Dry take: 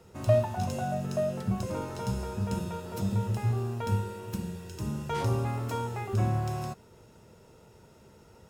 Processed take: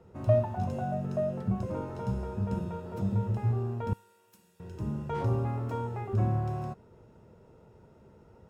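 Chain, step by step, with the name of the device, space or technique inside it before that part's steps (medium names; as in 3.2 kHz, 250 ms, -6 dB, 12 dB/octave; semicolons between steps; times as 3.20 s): through cloth (treble shelf 2.4 kHz -17.5 dB); 3.93–4.60 s: differentiator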